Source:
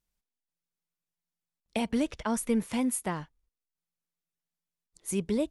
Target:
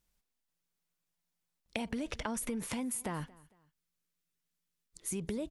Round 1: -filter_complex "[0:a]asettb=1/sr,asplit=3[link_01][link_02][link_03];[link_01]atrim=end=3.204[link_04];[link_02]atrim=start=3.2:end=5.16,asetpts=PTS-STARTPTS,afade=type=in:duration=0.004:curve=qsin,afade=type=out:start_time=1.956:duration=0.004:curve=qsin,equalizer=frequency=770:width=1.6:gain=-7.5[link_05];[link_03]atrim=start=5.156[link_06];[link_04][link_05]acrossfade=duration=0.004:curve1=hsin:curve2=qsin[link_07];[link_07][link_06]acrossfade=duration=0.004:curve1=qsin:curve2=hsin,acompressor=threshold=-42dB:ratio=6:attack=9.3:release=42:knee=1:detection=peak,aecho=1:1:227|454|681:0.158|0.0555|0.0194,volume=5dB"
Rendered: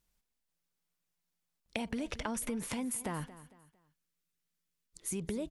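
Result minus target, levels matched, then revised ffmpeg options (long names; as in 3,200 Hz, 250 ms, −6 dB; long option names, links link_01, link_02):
echo-to-direct +6.5 dB
-filter_complex "[0:a]asettb=1/sr,asplit=3[link_01][link_02][link_03];[link_01]atrim=end=3.204[link_04];[link_02]atrim=start=3.2:end=5.16,asetpts=PTS-STARTPTS,afade=type=in:duration=0.004:curve=qsin,afade=type=out:start_time=1.956:duration=0.004:curve=qsin,equalizer=frequency=770:width=1.6:gain=-7.5[link_05];[link_03]atrim=start=5.156[link_06];[link_04][link_05]acrossfade=duration=0.004:curve1=hsin:curve2=qsin[link_07];[link_07][link_06]acrossfade=duration=0.004:curve1=qsin:curve2=hsin,acompressor=threshold=-42dB:ratio=6:attack=9.3:release=42:knee=1:detection=peak,aecho=1:1:227|454:0.075|0.0262,volume=5dB"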